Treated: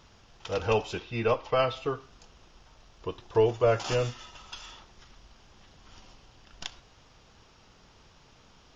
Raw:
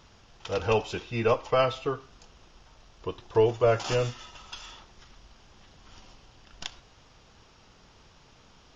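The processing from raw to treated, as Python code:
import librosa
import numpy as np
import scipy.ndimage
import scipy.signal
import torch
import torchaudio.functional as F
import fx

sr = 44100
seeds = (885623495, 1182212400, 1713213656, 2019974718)

y = fx.cheby1_lowpass(x, sr, hz=4500.0, order=2, at=(0.98, 1.77))
y = F.gain(torch.from_numpy(y), -1.0).numpy()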